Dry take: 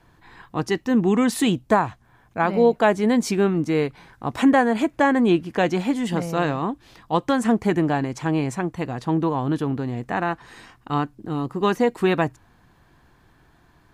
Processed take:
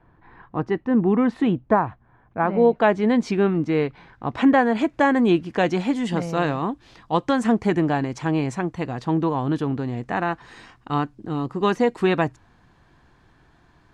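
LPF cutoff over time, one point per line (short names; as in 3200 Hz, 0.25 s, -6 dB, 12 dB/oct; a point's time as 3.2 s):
2.45 s 1600 Hz
2.86 s 3600 Hz
4.38 s 3600 Hz
5.07 s 7100 Hz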